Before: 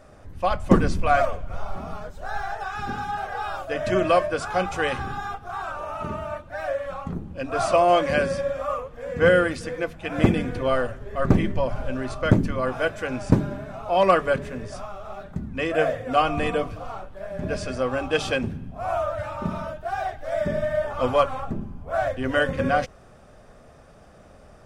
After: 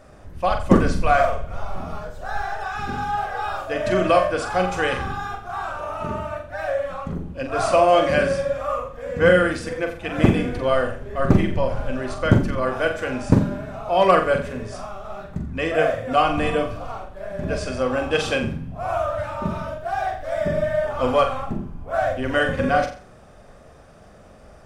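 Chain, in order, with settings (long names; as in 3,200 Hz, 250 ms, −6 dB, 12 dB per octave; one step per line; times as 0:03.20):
flutter between parallel walls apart 7.5 metres, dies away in 0.4 s
level +1.5 dB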